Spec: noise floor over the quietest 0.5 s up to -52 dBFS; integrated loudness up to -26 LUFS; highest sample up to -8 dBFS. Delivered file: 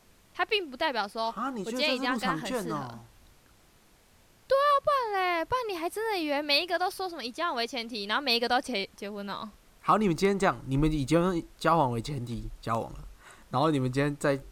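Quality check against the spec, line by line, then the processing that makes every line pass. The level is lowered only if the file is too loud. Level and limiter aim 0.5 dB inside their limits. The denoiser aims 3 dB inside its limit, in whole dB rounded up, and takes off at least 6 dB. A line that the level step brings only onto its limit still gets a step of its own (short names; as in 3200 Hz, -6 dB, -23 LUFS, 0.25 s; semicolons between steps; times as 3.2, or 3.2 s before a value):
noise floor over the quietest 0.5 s -60 dBFS: OK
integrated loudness -28.5 LUFS: OK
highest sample -11.0 dBFS: OK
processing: none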